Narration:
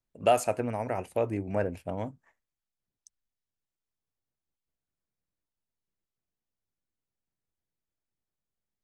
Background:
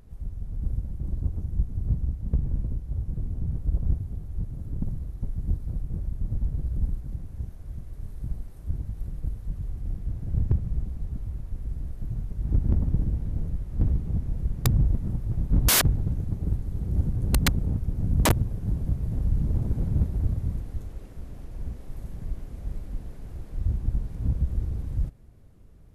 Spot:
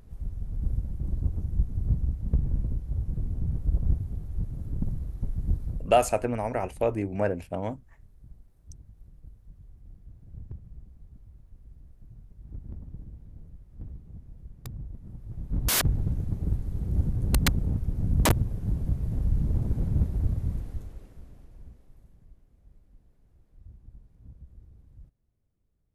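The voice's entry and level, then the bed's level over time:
5.65 s, +2.5 dB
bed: 5.66 s 0 dB
6.30 s -17.5 dB
14.90 s -17.5 dB
15.98 s -1 dB
20.65 s -1 dB
22.41 s -23 dB

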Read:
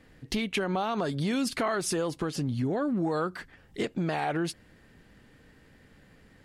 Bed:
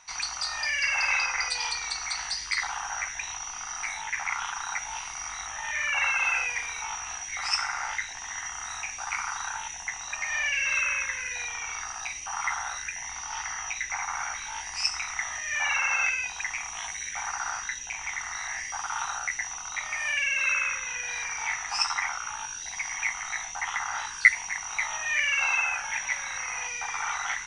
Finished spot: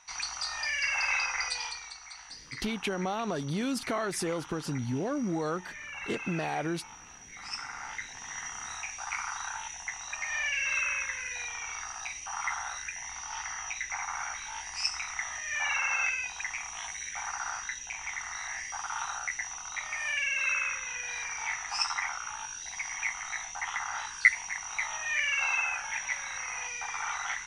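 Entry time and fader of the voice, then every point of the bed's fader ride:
2.30 s, -3.0 dB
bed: 1.53 s -3.5 dB
2.00 s -14.5 dB
7.16 s -14.5 dB
8.38 s -3.5 dB

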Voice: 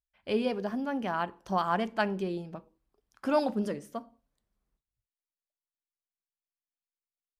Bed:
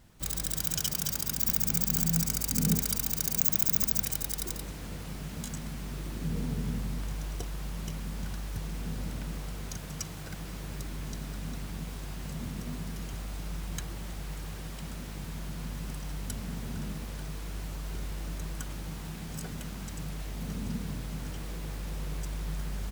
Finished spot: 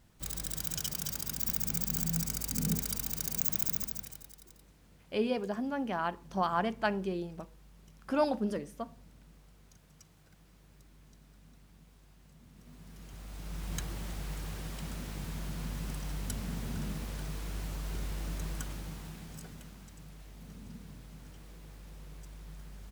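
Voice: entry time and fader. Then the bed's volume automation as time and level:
4.85 s, -2.0 dB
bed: 3.67 s -5 dB
4.41 s -21 dB
12.44 s -21 dB
13.74 s -0.5 dB
18.55 s -0.5 dB
19.94 s -13 dB

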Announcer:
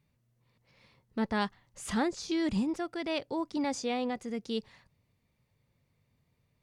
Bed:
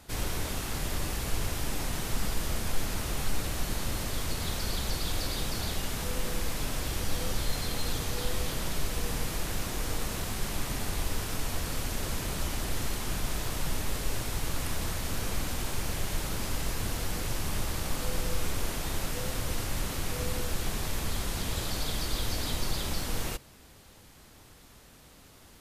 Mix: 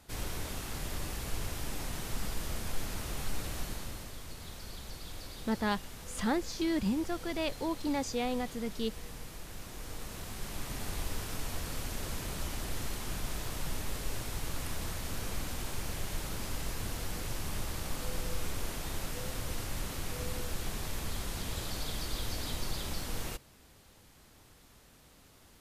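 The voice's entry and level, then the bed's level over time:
4.30 s, -1.0 dB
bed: 3.59 s -5.5 dB
4.18 s -13 dB
9.46 s -13 dB
10.91 s -5 dB

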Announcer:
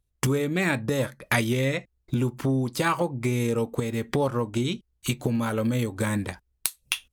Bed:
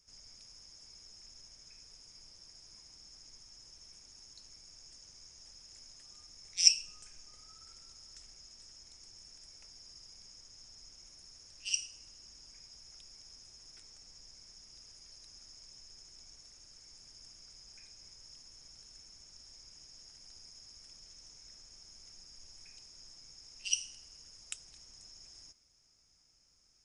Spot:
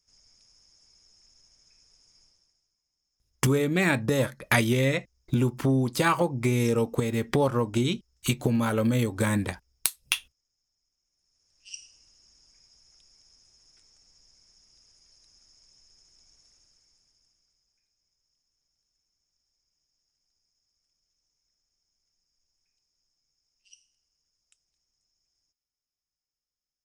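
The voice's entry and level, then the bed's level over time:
3.20 s, +1.0 dB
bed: 2.23 s -5.5 dB
2.77 s -25.5 dB
11.02 s -25.5 dB
11.87 s -5.5 dB
16.54 s -5.5 dB
17.85 s -23.5 dB

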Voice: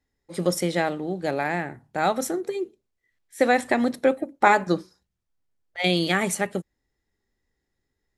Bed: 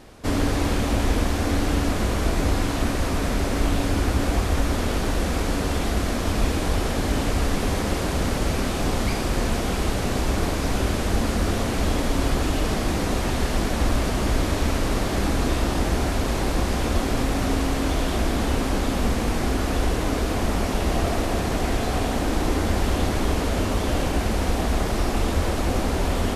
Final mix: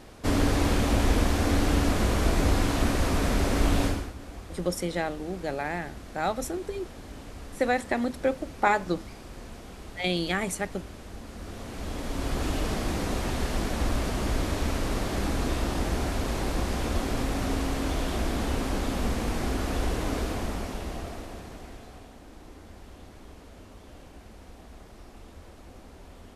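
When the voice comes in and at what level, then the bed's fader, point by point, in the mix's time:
4.20 s, -5.5 dB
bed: 3.86 s -1.5 dB
4.14 s -19.5 dB
11.25 s -19.5 dB
12.47 s -5.5 dB
20.20 s -5.5 dB
22.17 s -25 dB

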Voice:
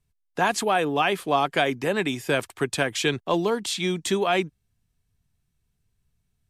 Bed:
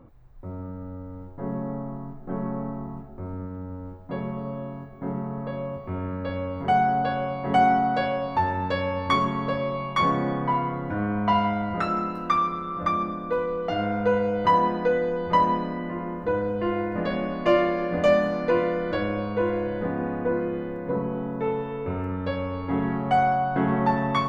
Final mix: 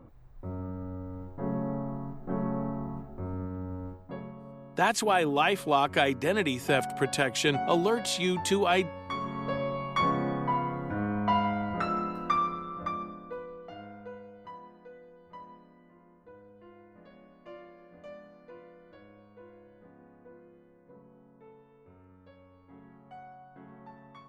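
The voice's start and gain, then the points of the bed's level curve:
4.40 s, -2.5 dB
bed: 3.86 s -1.5 dB
4.37 s -14 dB
9.08 s -14 dB
9.55 s -4.5 dB
12.44 s -4.5 dB
14.61 s -27.5 dB

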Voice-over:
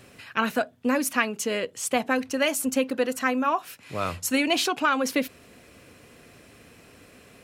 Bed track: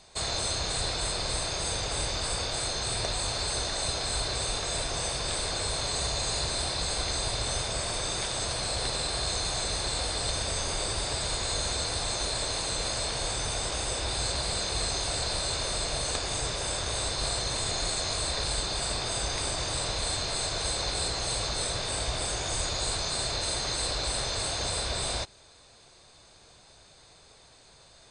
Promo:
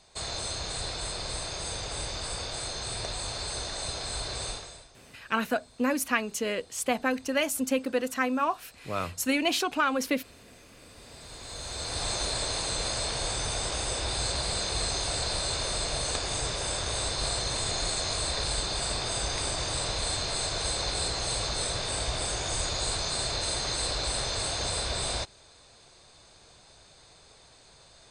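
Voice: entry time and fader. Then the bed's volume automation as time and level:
4.95 s, -3.0 dB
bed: 4.50 s -4 dB
4.96 s -27 dB
10.72 s -27 dB
12.05 s 0 dB

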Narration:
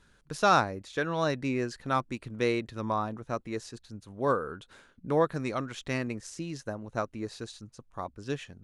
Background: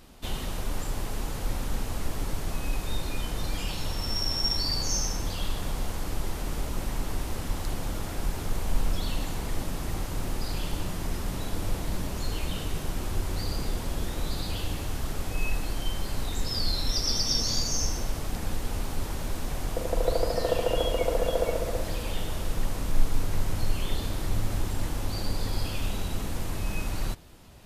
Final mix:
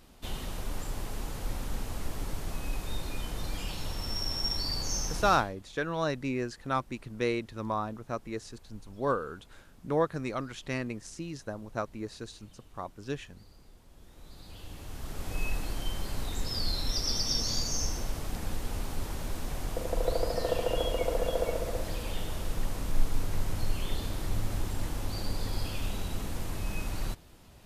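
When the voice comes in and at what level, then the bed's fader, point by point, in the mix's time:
4.80 s, -2.0 dB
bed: 5.34 s -4.5 dB
5.54 s -26 dB
13.87 s -26 dB
15.34 s -3.5 dB

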